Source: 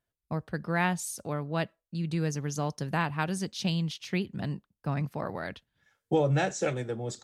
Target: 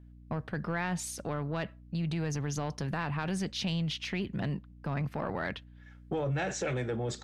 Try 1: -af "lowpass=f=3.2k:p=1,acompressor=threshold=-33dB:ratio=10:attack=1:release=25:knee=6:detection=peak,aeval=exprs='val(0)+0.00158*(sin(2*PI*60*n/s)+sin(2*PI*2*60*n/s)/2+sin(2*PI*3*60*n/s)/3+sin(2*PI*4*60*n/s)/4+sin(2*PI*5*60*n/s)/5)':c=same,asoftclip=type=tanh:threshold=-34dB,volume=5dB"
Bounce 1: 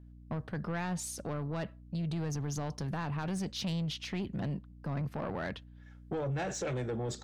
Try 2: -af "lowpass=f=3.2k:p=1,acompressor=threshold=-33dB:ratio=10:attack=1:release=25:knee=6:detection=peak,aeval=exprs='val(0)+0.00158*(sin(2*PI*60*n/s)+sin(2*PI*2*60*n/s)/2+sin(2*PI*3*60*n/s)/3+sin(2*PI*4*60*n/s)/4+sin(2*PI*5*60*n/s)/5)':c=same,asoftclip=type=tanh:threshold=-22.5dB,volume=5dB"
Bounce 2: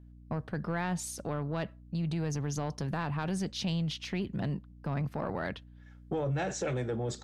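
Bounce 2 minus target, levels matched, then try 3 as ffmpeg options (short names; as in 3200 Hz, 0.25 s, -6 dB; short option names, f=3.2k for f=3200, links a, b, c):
2000 Hz band -3.0 dB
-af "lowpass=f=3.2k:p=1,equalizer=f=2.2k:t=o:w=1.5:g=5.5,acompressor=threshold=-33dB:ratio=10:attack=1:release=25:knee=6:detection=peak,aeval=exprs='val(0)+0.00158*(sin(2*PI*60*n/s)+sin(2*PI*2*60*n/s)/2+sin(2*PI*3*60*n/s)/3+sin(2*PI*4*60*n/s)/4+sin(2*PI*5*60*n/s)/5)':c=same,asoftclip=type=tanh:threshold=-22.5dB,volume=5dB"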